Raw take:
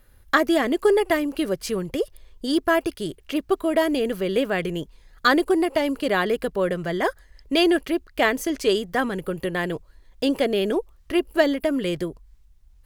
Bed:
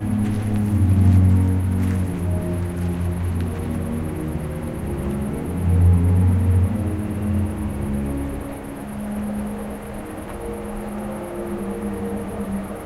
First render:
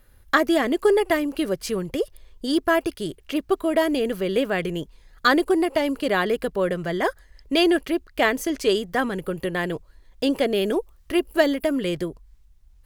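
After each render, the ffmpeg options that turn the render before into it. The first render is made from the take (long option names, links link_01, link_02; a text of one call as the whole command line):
ffmpeg -i in.wav -filter_complex "[0:a]asettb=1/sr,asplit=3[link_01][link_02][link_03];[link_01]atrim=end=10.544[link_04];[link_02]atrim=start=10.54:end=11.73,asetpts=PTS-STARTPTS,afade=type=in:duration=0.004:curve=qsin,afade=type=out:start_time=1.186:duration=0.004:curve=qsin,highshelf=frequency=8100:gain=5.5[link_05];[link_03]atrim=start=11.726[link_06];[link_04][link_05]acrossfade=duration=0.004:curve1=hsin:curve2=qsin[link_07];[link_07][link_06]acrossfade=duration=0.004:curve1=qsin:curve2=hsin" out.wav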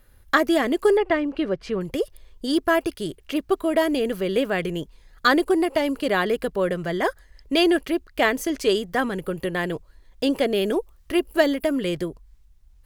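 ffmpeg -i in.wav -filter_complex "[0:a]asettb=1/sr,asplit=3[link_01][link_02][link_03];[link_01]atrim=end=0.974[link_04];[link_02]atrim=start=0.97:end=1.81,asetpts=PTS-STARTPTS,afade=type=in:duration=0.004:curve=qsin,afade=type=out:start_time=0.836:duration=0.004:curve=qsin,lowpass=3000[link_05];[link_03]atrim=start=1.806[link_06];[link_04][link_05]acrossfade=duration=0.004:curve1=hsin:curve2=qsin[link_07];[link_07][link_06]acrossfade=duration=0.004:curve1=qsin:curve2=hsin" out.wav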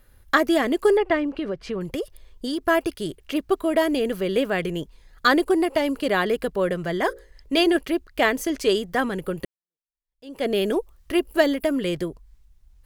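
ffmpeg -i in.wav -filter_complex "[0:a]asettb=1/sr,asplit=3[link_01][link_02][link_03];[link_01]atrim=end=1.364[link_04];[link_02]atrim=start=1.36:end=2.65,asetpts=PTS-STARTPTS,afade=type=in:duration=0.004:curve=qsin,afade=type=out:start_time=1.286:duration=0.004:curve=qsin,acompressor=threshold=-23dB:ratio=6:attack=3.2:release=140:knee=1:detection=peak[link_05];[link_03]atrim=start=2.646[link_06];[link_04][link_05]acrossfade=duration=0.004:curve1=hsin:curve2=qsin[link_07];[link_07][link_06]acrossfade=duration=0.004:curve1=qsin:curve2=hsin,asettb=1/sr,asplit=3[link_08][link_09][link_10];[link_08]atrim=end=7.054[link_11];[link_09]atrim=start=7.05:end=7.77,asetpts=PTS-STARTPTS,afade=type=in:duration=0.004:curve=qsin,afade=type=out:start_time=0.716:duration=0.004:curve=qsin,bandreject=frequency=60:width_type=h:width=6,bandreject=frequency=120:width_type=h:width=6,bandreject=frequency=180:width_type=h:width=6,bandreject=frequency=240:width_type=h:width=6,bandreject=frequency=300:width_type=h:width=6,bandreject=frequency=360:width_type=h:width=6,bandreject=frequency=420:width_type=h:width=6,bandreject=frequency=480:width_type=h:width=6,bandreject=frequency=540:width_type=h:width=6,bandreject=frequency=600:width_type=h:width=6[link_12];[link_10]atrim=start=7.766[link_13];[link_11][link_12]acrossfade=duration=0.004:curve1=hsin:curve2=qsin[link_14];[link_14][link_13]acrossfade=duration=0.004:curve1=qsin:curve2=hsin,asplit=2[link_15][link_16];[link_15]atrim=end=9.45,asetpts=PTS-STARTPTS,afade=type=out:start_time=9.446:duration=0.004:curve=hsin[link_17];[link_16]atrim=start=9.45,asetpts=PTS-STARTPTS,afade=type=in:duration=1.02:curve=exp[link_18];[link_17][link_18]concat=n=2:v=0:a=1" out.wav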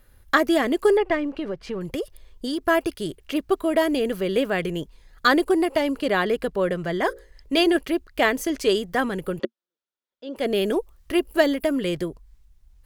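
ffmpeg -i in.wav -filter_complex "[0:a]asettb=1/sr,asplit=3[link_01][link_02][link_03];[link_01]atrim=end=1.084[link_04];[link_02]atrim=start=1.08:end=1.84,asetpts=PTS-STARTPTS,afade=type=in:duration=0.004:curve=qsin,afade=type=out:start_time=0.756:duration=0.004:curve=qsin,aeval=exprs='if(lt(val(0),0),0.708*val(0),val(0))':channel_layout=same[link_05];[link_03]atrim=start=1.836[link_06];[link_04][link_05]acrossfade=duration=0.004:curve1=hsin:curve2=qsin[link_07];[link_07][link_06]acrossfade=duration=0.004:curve1=qsin:curve2=hsin,asettb=1/sr,asplit=3[link_08][link_09][link_10];[link_08]atrim=end=5.834[link_11];[link_09]atrim=start=5.83:end=7.07,asetpts=PTS-STARTPTS,afade=type=in:duration=0.004:curve=qsin,afade=type=out:start_time=1.236:duration=0.004:curve=qsin,highshelf=frequency=8300:gain=-5[link_12];[link_10]atrim=start=7.066[link_13];[link_11][link_12]acrossfade=duration=0.004:curve1=hsin:curve2=qsin[link_14];[link_14][link_13]acrossfade=duration=0.004:curve1=qsin:curve2=hsin,asettb=1/sr,asplit=3[link_15][link_16][link_17];[link_15]atrim=end=9.394[link_18];[link_16]atrim=start=9.39:end=10.36,asetpts=PTS-STARTPTS,afade=type=in:duration=0.004:curve=qsin,afade=type=out:start_time=0.966:duration=0.004:curve=qsin,highpass=230,equalizer=frequency=230:width_type=q:width=4:gain=10,equalizer=frequency=360:width_type=q:width=4:gain=9,equalizer=frequency=560:width_type=q:width=4:gain=9,equalizer=frequency=960:width_type=q:width=4:gain=4,equalizer=frequency=1400:width_type=q:width=4:gain=9,equalizer=frequency=3500:width_type=q:width=4:gain=7,lowpass=frequency=5900:width=0.5412,lowpass=frequency=5900:width=1.3066[link_19];[link_17]atrim=start=10.356[link_20];[link_18][link_19]acrossfade=duration=0.004:curve1=hsin:curve2=qsin[link_21];[link_21][link_20]acrossfade=duration=0.004:curve1=qsin:curve2=hsin" out.wav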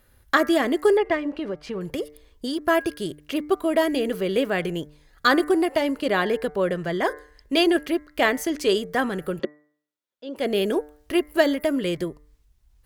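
ffmpeg -i in.wav -af "highpass=frequency=58:poles=1,bandreject=frequency=149.2:width_type=h:width=4,bandreject=frequency=298.4:width_type=h:width=4,bandreject=frequency=447.6:width_type=h:width=4,bandreject=frequency=596.8:width_type=h:width=4,bandreject=frequency=746:width_type=h:width=4,bandreject=frequency=895.2:width_type=h:width=4,bandreject=frequency=1044.4:width_type=h:width=4,bandreject=frequency=1193.6:width_type=h:width=4,bandreject=frequency=1342.8:width_type=h:width=4,bandreject=frequency=1492:width_type=h:width=4,bandreject=frequency=1641.2:width_type=h:width=4,bandreject=frequency=1790.4:width_type=h:width=4,bandreject=frequency=1939.6:width_type=h:width=4,bandreject=frequency=2088.8:width_type=h:width=4,bandreject=frequency=2238:width_type=h:width=4" out.wav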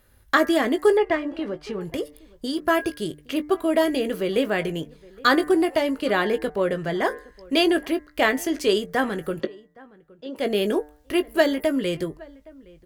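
ffmpeg -i in.wav -filter_complex "[0:a]asplit=2[link_01][link_02];[link_02]adelay=19,volume=-11dB[link_03];[link_01][link_03]amix=inputs=2:normalize=0,asplit=2[link_04][link_05];[link_05]adelay=816.3,volume=-23dB,highshelf=frequency=4000:gain=-18.4[link_06];[link_04][link_06]amix=inputs=2:normalize=0" out.wav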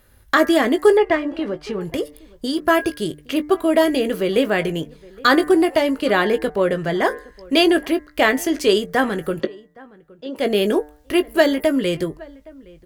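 ffmpeg -i in.wav -af "volume=4.5dB,alimiter=limit=-3dB:level=0:latency=1" out.wav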